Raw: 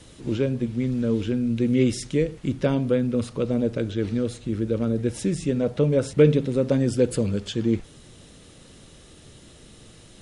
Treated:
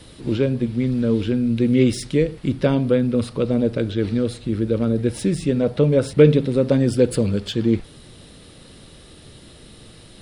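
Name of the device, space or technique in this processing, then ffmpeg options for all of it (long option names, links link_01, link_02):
exciter from parts: -filter_complex "[0:a]asplit=2[link_01][link_02];[link_02]highpass=frequency=3600:width=0.5412,highpass=frequency=3600:width=1.3066,asoftclip=type=tanh:threshold=-33dB,highpass=frequency=4200:width=0.5412,highpass=frequency=4200:width=1.3066,volume=-4dB[link_03];[link_01][link_03]amix=inputs=2:normalize=0,volume=4dB"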